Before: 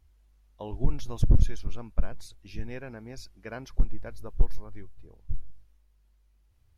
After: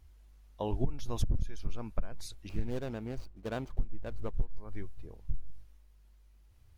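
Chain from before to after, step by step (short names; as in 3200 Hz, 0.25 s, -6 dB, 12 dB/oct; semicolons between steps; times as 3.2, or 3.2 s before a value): 2.49–4.57 median filter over 25 samples; compressor 16:1, threshold -28 dBFS, peak gain reduction 17.5 dB; gain +4 dB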